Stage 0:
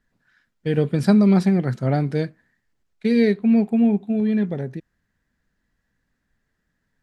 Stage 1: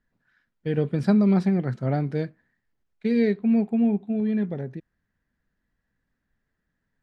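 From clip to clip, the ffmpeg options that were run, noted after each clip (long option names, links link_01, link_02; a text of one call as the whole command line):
ffmpeg -i in.wav -af "aemphasis=mode=reproduction:type=50kf,volume=-4dB" out.wav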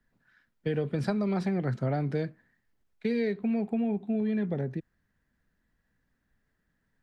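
ffmpeg -i in.wav -filter_complex "[0:a]acrossover=split=110|360|1400[link_01][link_02][link_03][link_04];[link_02]alimiter=level_in=2.5dB:limit=-24dB:level=0:latency=1,volume=-2.5dB[link_05];[link_01][link_05][link_03][link_04]amix=inputs=4:normalize=0,acompressor=threshold=-27dB:ratio=6,volume=2dB" out.wav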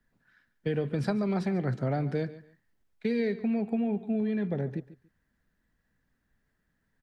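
ffmpeg -i in.wav -af "aecho=1:1:142|284:0.15|0.0314" out.wav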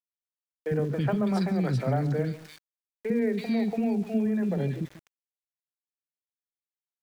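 ffmpeg -i in.wav -filter_complex "[0:a]acrossover=split=360|2100[link_01][link_02][link_03];[link_01]adelay=50[link_04];[link_03]adelay=330[link_05];[link_04][link_02][link_05]amix=inputs=3:normalize=0,aeval=exprs='val(0)*gte(abs(val(0)),0.00335)':channel_layout=same,volume=4dB" out.wav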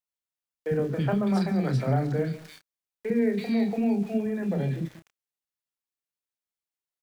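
ffmpeg -i in.wav -filter_complex "[0:a]asplit=2[link_01][link_02];[link_02]adelay=30,volume=-7dB[link_03];[link_01][link_03]amix=inputs=2:normalize=0" out.wav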